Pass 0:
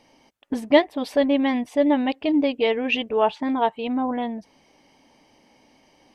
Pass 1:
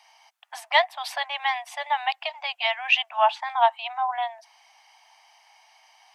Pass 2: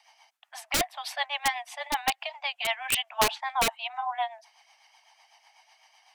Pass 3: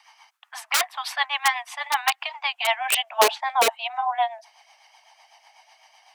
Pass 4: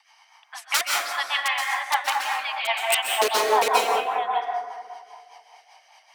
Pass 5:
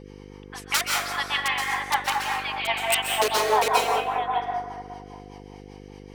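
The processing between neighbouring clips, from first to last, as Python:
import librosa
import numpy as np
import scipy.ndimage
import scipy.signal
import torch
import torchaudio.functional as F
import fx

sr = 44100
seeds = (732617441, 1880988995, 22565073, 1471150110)

y1 = scipy.signal.sosfilt(scipy.signal.butter(16, 680.0, 'highpass', fs=sr, output='sos'), x)
y1 = y1 * 10.0 ** (4.0 / 20.0)
y2 = (np.mod(10.0 ** (14.0 / 20.0) * y1 + 1.0, 2.0) - 1.0) / 10.0 ** (14.0 / 20.0)
y2 = fx.rotary(y2, sr, hz=8.0)
y3 = fx.filter_sweep_highpass(y2, sr, from_hz=1100.0, to_hz=440.0, start_s=2.42, end_s=3.29, q=2.2)
y3 = y3 * 10.0 ** (4.0 / 20.0)
y4 = fx.rev_plate(y3, sr, seeds[0], rt60_s=2.0, hf_ratio=0.35, predelay_ms=115, drr_db=-2.5)
y4 = fx.rotary(y4, sr, hz=5.0)
y5 = fx.dmg_buzz(y4, sr, base_hz=50.0, harmonics=10, level_db=-43.0, tilt_db=-1, odd_only=False)
y5 = y5 * 10.0 ** (-1.0 / 20.0)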